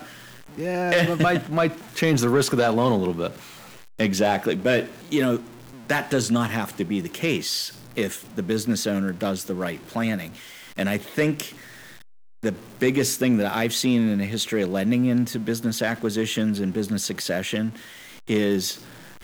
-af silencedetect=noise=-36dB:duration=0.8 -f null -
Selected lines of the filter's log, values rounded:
silence_start: 11.50
silence_end: 12.43 | silence_duration: 0.94